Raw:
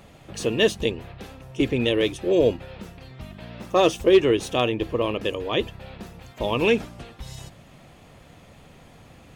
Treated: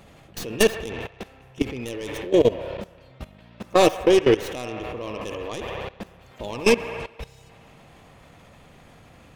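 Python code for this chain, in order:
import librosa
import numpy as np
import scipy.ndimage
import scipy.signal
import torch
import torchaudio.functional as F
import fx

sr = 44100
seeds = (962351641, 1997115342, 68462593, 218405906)

y = fx.tracing_dist(x, sr, depth_ms=0.18)
y = fx.echo_wet_bandpass(y, sr, ms=67, feedback_pct=78, hz=1200.0, wet_db=-5.5)
y = fx.level_steps(y, sr, step_db=18)
y = F.gain(torch.from_numpy(y), 4.0).numpy()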